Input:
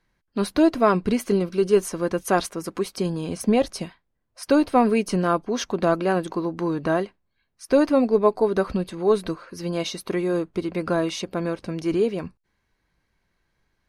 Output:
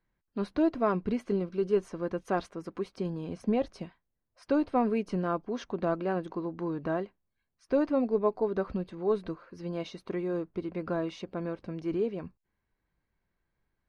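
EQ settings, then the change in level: tape spacing loss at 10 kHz 21 dB; -7.5 dB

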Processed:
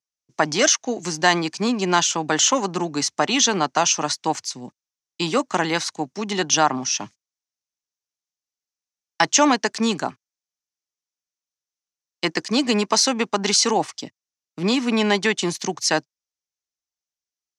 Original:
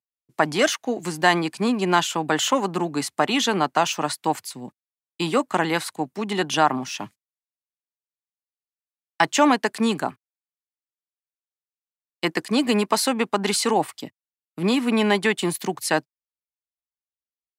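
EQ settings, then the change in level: synth low-pass 6000 Hz, resonance Q 5; 0.0 dB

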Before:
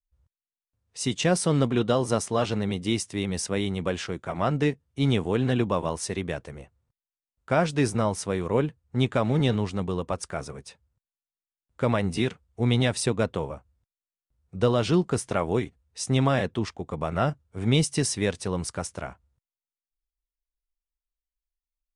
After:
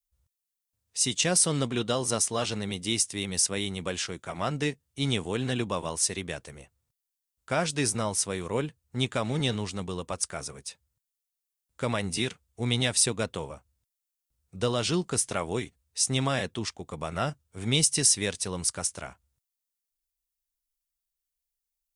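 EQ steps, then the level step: high shelf 2400 Hz +11.5 dB; high shelf 6400 Hz +6 dB; -6.0 dB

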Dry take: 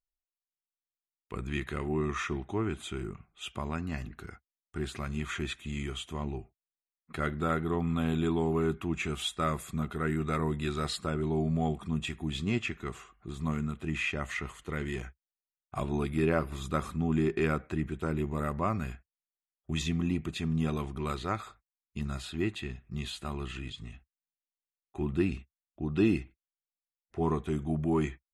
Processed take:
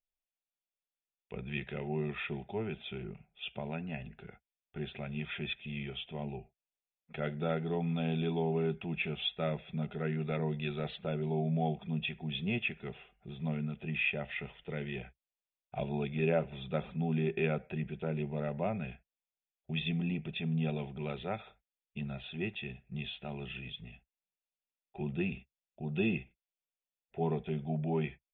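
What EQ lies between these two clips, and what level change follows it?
rippled Chebyshev low-pass 3600 Hz, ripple 6 dB; fixed phaser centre 300 Hz, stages 6; +4.5 dB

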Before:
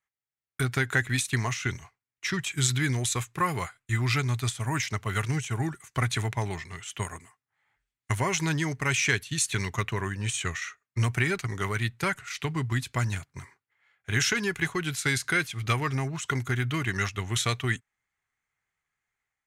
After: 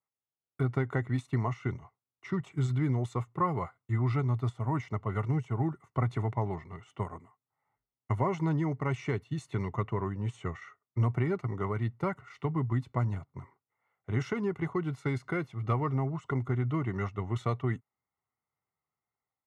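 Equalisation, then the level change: polynomial smoothing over 65 samples; HPF 92 Hz; 0.0 dB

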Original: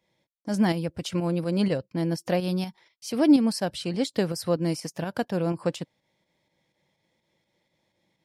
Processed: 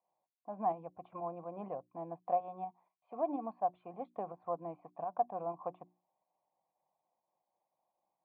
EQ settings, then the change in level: vocal tract filter a; HPF 130 Hz; notches 60/120/180/240/300/360 Hz; +4.5 dB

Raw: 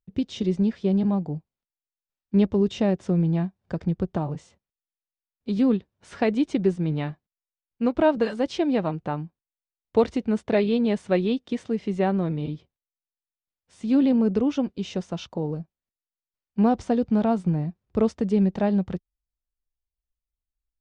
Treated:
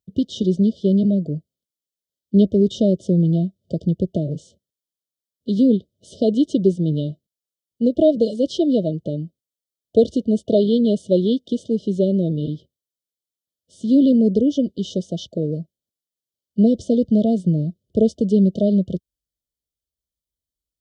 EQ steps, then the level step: HPF 82 Hz; brick-wall FIR band-stop 680–2900 Hz; +5.5 dB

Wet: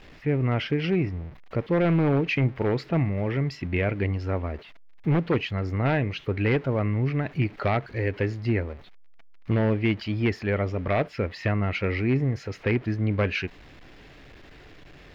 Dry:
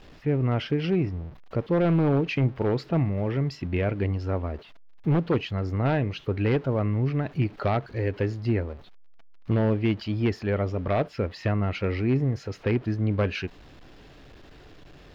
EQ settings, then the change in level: bell 2100 Hz +7 dB 0.69 oct; 0.0 dB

